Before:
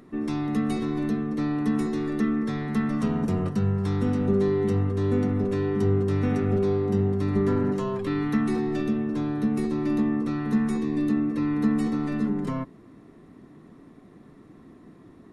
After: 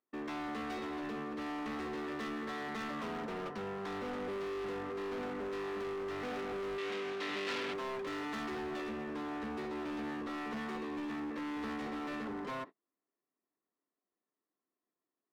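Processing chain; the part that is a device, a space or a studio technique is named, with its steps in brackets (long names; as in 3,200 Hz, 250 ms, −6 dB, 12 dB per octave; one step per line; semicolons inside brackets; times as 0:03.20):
walkie-talkie (band-pass filter 530–2,900 Hz; hard clipping −38.5 dBFS, distortion −7 dB; noise gate −48 dBFS, range −36 dB)
0:06.78–0:07.74: meter weighting curve D
level +1 dB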